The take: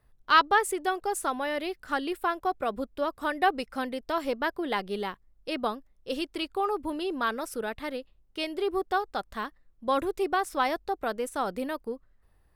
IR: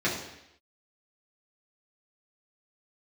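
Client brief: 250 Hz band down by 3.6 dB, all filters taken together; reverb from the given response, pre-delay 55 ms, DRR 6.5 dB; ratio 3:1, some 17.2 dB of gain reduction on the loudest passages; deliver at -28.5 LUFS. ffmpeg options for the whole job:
-filter_complex "[0:a]equalizer=f=250:t=o:g=-5,acompressor=threshold=0.0112:ratio=3,asplit=2[s0][s1];[1:a]atrim=start_sample=2205,adelay=55[s2];[s1][s2]afir=irnorm=-1:irlink=0,volume=0.119[s3];[s0][s3]amix=inputs=2:normalize=0,volume=3.76"

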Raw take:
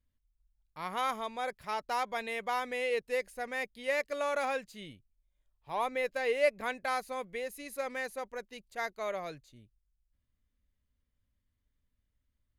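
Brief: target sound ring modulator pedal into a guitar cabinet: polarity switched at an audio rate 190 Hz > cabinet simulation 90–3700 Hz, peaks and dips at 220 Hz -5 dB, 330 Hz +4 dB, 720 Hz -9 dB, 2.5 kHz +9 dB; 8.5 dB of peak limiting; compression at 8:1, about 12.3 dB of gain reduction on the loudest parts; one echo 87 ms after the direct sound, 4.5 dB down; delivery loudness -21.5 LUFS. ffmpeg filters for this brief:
-af "acompressor=threshold=0.02:ratio=8,alimiter=level_in=2.82:limit=0.0631:level=0:latency=1,volume=0.355,aecho=1:1:87:0.596,aeval=exprs='val(0)*sgn(sin(2*PI*190*n/s))':c=same,highpass=90,equalizer=f=220:t=q:w=4:g=-5,equalizer=f=330:t=q:w=4:g=4,equalizer=f=720:t=q:w=4:g=-9,equalizer=f=2500:t=q:w=4:g=9,lowpass=f=3700:w=0.5412,lowpass=f=3700:w=1.3066,volume=8.91"

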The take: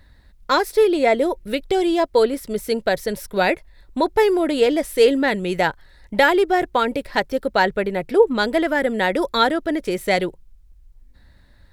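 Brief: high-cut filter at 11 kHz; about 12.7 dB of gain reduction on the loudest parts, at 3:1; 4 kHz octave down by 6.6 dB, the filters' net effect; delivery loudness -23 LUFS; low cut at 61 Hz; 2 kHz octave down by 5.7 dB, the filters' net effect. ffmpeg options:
-af "highpass=61,lowpass=11000,equalizer=f=2000:t=o:g=-6,equalizer=f=4000:t=o:g=-6,acompressor=threshold=0.0447:ratio=3,volume=2"

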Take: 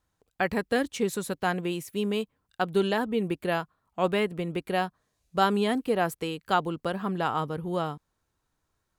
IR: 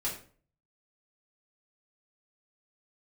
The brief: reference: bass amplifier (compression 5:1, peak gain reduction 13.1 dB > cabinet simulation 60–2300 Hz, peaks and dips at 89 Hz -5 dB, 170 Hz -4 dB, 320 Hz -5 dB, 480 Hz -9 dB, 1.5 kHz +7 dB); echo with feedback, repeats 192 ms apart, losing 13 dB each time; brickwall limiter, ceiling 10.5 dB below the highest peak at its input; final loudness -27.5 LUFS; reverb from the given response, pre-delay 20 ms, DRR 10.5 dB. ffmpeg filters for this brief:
-filter_complex "[0:a]alimiter=limit=0.1:level=0:latency=1,aecho=1:1:192|384|576:0.224|0.0493|0.0108,asplit=2[s0][s1];[1:a]atrim=start_sample=2205,adelay=20[s2];[s1][s2]afir=irnorm=-1:irlink=0,volume=0.188[s3];[s0][s3]amix=inputs=2:normalize=0,acompressor=threshold=0.0141:ratio=5,highpass=f=60:w=0.5412,highpass=f=60:w=1.3066,equalizer=f=89:t=q:w=4:g=-5,equalizer=f=170:t=q:w=4:g=-4,equalizer=f=320:t=q:w=4:g=-5,equalizer=f=480:t=q:w=4:g=-9,equalizer=f=1500:t=q:w=4:g=7,lowpass=f=2300:w=0.5412,lowpass=f=2300:w=1.3066,volume=5.62"

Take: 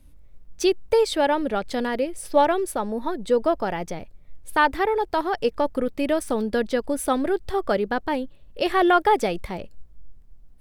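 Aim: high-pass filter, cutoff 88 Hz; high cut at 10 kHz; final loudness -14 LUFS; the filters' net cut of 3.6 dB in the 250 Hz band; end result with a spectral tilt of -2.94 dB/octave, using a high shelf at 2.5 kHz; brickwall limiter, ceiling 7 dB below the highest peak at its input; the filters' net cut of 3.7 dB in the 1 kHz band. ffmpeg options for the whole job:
-af "highpass=88,lowpass=10000,equalizer=f=250:t=o:g=-4.5,equalizer=f=1000:t=o:g=-4,highshelf=f=2500:g=-3.5,volume=4.73,alimiter=limit=0.75:level=0:latency=1"

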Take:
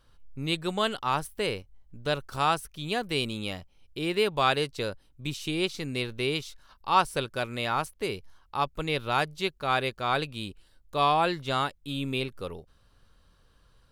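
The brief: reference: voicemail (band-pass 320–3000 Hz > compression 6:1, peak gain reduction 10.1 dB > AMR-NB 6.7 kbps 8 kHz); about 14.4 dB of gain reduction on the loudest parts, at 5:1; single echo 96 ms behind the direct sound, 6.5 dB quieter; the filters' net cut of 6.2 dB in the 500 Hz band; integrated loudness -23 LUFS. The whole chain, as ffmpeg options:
-af "equalizer=f=500:t=o:g=-7,acompressor=threshold=0.0178:ratio=5,highpass=320,lowpass=3000,aecho=1:1:96:0.473,acompressor=threshold=0.00891:ratio=6,volume=17.8" -ar 8000 -c:a libopencore_amrnb -b:a 6700

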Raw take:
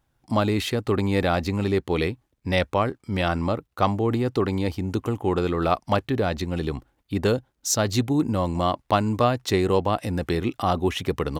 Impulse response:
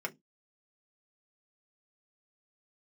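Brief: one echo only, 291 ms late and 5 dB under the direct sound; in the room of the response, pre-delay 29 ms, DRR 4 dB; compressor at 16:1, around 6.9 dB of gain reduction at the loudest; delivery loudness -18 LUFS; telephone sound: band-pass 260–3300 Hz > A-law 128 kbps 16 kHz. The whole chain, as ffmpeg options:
-filter_complex "[0:a]acompressor=threshold=0.0794:ratio=16,aecho=1:1:291:0.562,asplit=2[s0][s1];[1:a]atrim=start_sample=2205,adelay=29[s2];[s1][s2]afir=irnorm=-1:irlink=0,volume=0.447[s3];[s0][s3]amix=inputs=2:normalize=0,highpass=260,lowpass=3300,volume=3.35" -ar 16000 -c:a pcm_alaw

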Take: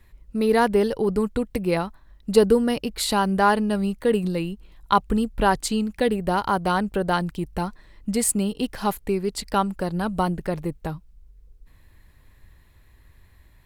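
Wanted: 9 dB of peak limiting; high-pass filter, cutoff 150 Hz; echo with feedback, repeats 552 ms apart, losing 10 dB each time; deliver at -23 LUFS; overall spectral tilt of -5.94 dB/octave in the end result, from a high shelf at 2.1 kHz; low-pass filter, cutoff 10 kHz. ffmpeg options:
-af "highpass=150,lowpass=10000,highshelf=f=2100:g=-8.5,alimiter=limit=0.2:level=0:latency=1,aecho=1:1:552|1104|1656|2208:0.316|0.101|0.0324|0.0104,volume=1.41"

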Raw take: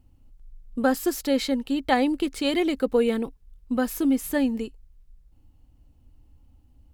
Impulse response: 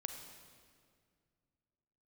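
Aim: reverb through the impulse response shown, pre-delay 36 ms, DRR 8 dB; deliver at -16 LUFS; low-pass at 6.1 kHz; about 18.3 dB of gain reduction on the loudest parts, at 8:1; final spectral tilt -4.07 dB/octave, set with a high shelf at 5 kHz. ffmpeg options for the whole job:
-filter_complex "[0:a]lowpass=6100,highshelf=f=5000:g=-5,acompressor=threshold=0.0158:ratio=8,asplit=2[s0][s1];[1:a]atrim=start_sample=2205,adelay=36[s2];[s1][s2]afir=irnorm=-1:irlink=0,volume=0.473[s3];[s0][s3]amix=inputs=2:normalize=0,volume=15.8"

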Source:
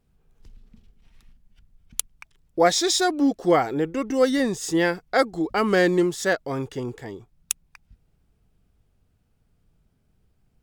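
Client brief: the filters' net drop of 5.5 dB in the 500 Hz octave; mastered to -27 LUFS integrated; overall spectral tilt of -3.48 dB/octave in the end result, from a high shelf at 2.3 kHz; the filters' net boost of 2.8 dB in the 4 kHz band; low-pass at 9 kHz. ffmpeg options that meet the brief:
-af "lowpass=9000,equalizer=f=500:t=o:g=-7,highshelf=f=2300:g=-3.5,equalizer=f=4000:t=o:g=7,volume=0.794"

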